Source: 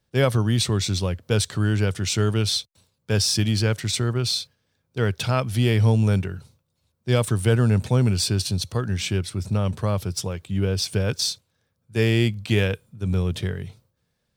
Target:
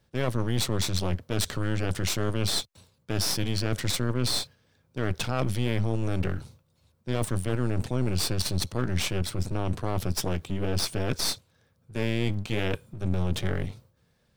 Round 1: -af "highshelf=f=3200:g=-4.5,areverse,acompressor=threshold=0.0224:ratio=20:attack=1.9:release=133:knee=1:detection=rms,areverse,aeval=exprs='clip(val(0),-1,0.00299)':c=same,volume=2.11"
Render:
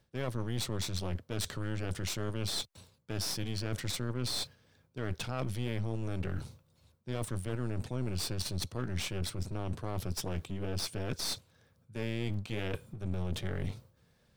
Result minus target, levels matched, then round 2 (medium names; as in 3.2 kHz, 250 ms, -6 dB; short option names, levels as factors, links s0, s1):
compression: peak gain reduction +8.5 dB
-af "highshelf=f=3200:g=-4.5,areverse,acompressor=threshold=0.0631:ratio=20:attack=1.9:release=133:knee=1:detection=rms,areverse,aeval=exprs='clip(val(0),-1,0.00299)':c=same,volume=2.11"